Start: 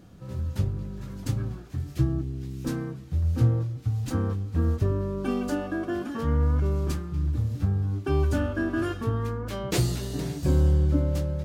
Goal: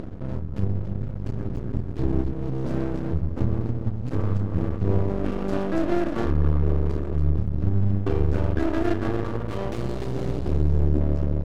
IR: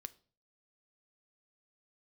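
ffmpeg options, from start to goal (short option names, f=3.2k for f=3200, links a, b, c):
-filter_complex "[0:a]asplit=2[a][b];[b]asetrate=37084,aresample=44100,atempo=1.18921,volume=-15dB[c];[a][c]amix=inputs=2:normalize=0,crystalizer=i=3.5:c=0,alimiter=limit=-18.5dB:level=0:latency=1:release=106,lowshelf=f=110:g=10,aecho=1:1:43|124|283|494:0.316|0.224|0.596|0.237,acompressor=mode=upward:threshold=-20dB:ratio=2.5,equalizer=f=350:t=o:w=0.5:g=7,asplit=2[d][e];[e]adelay=31,volume=-9dB[f];[d][f]amix=inputs=2:normalize=0,adynamicsmooth=sensitivity=2:basefreq=770,aeval=exprs='max(val(0),0)':c=same"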